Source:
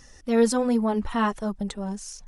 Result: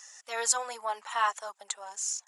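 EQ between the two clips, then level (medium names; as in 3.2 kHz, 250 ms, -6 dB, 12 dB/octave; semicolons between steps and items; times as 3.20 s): high-pass 770 Hz 24 dB/octave; peaking EQ 7.1 kHz +13.5 dB 0.31 oct; 0.0 dB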